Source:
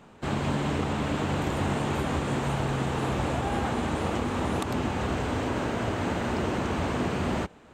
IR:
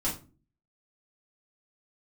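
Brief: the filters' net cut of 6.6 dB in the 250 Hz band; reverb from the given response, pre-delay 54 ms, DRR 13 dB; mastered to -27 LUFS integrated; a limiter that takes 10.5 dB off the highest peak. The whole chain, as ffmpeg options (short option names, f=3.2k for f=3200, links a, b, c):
-filter_complex "[0:a]equalizer=f=250:t=o:g=-9,alimiter=level_in=3dB:limit=-24dB:level=0:latency=1,volume=-3dB,asplit=2[a][b];[1:a]atrim=start_sample=2205,adelay=54[c];[b][c]afir=irnorm=-1:irlink=0,volume=-19.5dB[d];[a][d]amix=inputs=2:normalize=0,volume=8.5dB"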